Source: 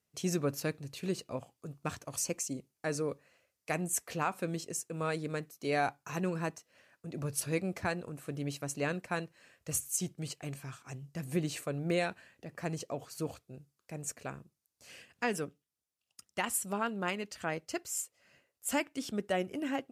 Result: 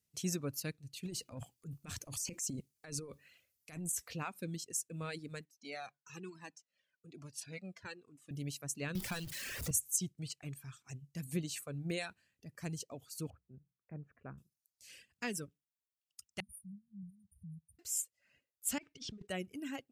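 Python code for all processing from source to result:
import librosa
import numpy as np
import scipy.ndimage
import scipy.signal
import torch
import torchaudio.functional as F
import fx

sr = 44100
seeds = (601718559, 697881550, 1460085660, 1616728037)

y = fx.chain(x, sr, fx.over_compress(threshold_db=-36.0, ratio=-0.5),
    fx.transient(attack_db=-6, sustain_db=8), at=(1.05, 4.11))
y = fx.chain(y, sr, fx.bandpass_edges(low_hz=200.0, high_hz=6700.0),
    fx.comb_cascade(direction='falling', hz=1.1), at=(5.45, 8.31))
y = fx.chain(y, sr, fx.zero_step(step_db=-34.0),
    fx.band_squash(depth_pct=70), at=(8.95, 9.71))
y = fx.chain(y, sr, fx.lowpass(hz=1600.0, slope=24),
    fx.hum_notches(base_hz=60, count=3), at=(13.3, 14.38))
y = fx.chain(y, sr, fx.brickwall_bandstop(low_hz=200.0, high_hz=9000.0),
    fx.air_absorb(metres=99.0),
    fx.band_squash(depth_pct=40), at=(16.4, 17.79))
y = fx.chain(y, sr, fx.block_float(bits=5),
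    fx.over_compress(threshold_db=-42.0, ratio=-1.0),
    fx.air_absorb(metres=120.0), at=(18.78, 19.28))
y = fx.dereverb_blind(y, sr, rt60_s=1.7)
y = fx.peak_eq(y, sr, hz=760.0, db=-13.0, octaves=3.0)
y = F.gain(torch.from_numpy(y), 1.5).numpy()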